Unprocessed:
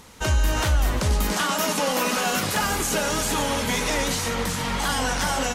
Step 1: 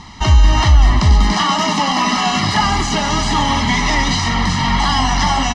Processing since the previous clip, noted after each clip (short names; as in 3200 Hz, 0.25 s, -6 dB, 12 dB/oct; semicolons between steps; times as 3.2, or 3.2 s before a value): in parallel at -2.5 dB: limiter -20.5 dBFS, peak gain reduction 8.5 dB; on the sum: Chebyshev low-pass 5300 Hz, order 3; comb 1 ms, depth 94%; gain +3.5 dB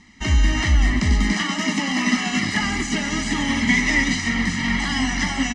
graphic EQ 125/250/1000/2000/4000/8000 Hz -4/+11/-9/+12/-4/+9 dB; upward expander 1.5:1, over -27 dBFS; gain -6.5 dB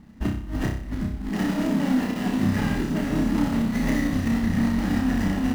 median filter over 41 samples; negative-ratio compressor -25 dBFS, ratio -1; on a send: flutter echo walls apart 5.3 m, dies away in 0.52 s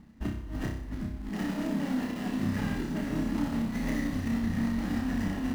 reverse; upward compressor, threshold -27 dBFS; reverse; reverb RT60 1.7 s, pre-delay 11 ms, DRR 11.5 dB; gain -7.5 dB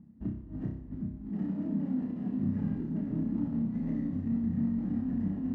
band-pass 170 Hz, Q 1.2; gain +1.5 dB